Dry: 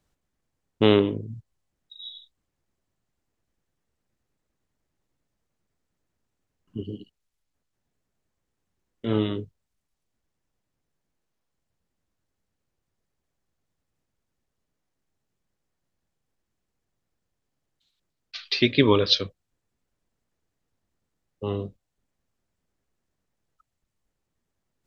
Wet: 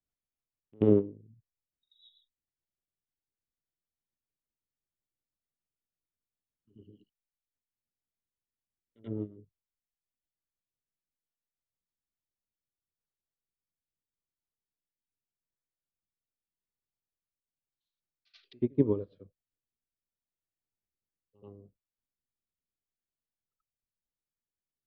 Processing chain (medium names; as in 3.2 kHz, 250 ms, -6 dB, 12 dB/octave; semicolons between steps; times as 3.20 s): low-pass that closes with the level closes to 500 Hz, closed at -24 dBFS; rotary cabinet horn 6.7 Hz, later 0.8 Hz, at 12.09 s; reverse echo 84 ms -14.5 dB; upward expansion 2.5:1, over -31 dBFS